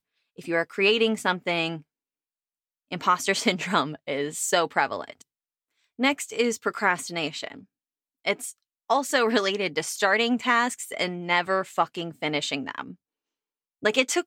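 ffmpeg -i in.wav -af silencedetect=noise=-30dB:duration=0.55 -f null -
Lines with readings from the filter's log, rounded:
silence_start: 1.77
silence_end: 2.92 | silence_duration: 1.15
silence_start: 5.10
silence_end: 6.00 | silence_duration: 0.89
silence_start: 7.52
silence_end: 8.27 | silence_duration: 0.75
silence_start: 12.91
silence_end: 13.84 | silence_duration: 0.93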